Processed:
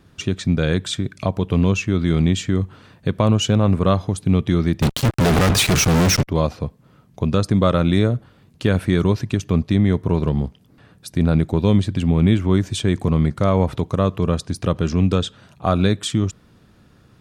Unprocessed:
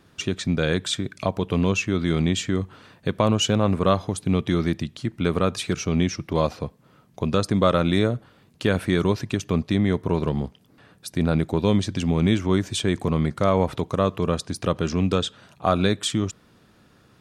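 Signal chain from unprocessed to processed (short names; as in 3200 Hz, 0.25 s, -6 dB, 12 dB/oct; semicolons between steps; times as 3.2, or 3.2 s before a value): low shelf 180 Hz +9.5 dB; 4.82–6.28 fuzz box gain 39 dB, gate -39 dBFS; 11.82–12.55 bell 5800 Hz -9.5 dB 0.49 oct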